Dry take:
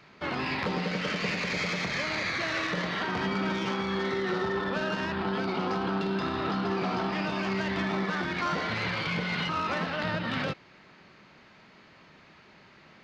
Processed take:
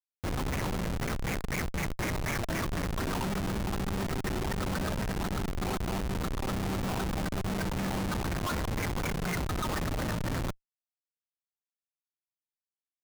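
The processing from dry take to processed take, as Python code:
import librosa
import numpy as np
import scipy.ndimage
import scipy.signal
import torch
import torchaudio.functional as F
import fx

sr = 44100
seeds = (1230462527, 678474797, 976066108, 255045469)

y = fx.filter_lfo_lowpass(x, sr, shape='sine', hz=4.0, low_hz=790.0, high_hz=2400.0, q=7.2)
y = fx.air_absorb(y, sr, metres=360.0)
y = fx.echo_thinned(y, sr, ms=63, feedback_pct=46, hz=190.0, wet_db=-9)
y = fx.schmitt(y, sr, flips_db=-22.0)
y = F.gain(torch.from_numpy(y), -4.0).numpy()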